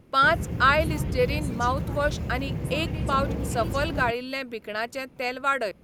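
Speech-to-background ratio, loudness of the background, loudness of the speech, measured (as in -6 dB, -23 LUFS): 4.5 dB, -31.0 LUFS, -26.5 LUFS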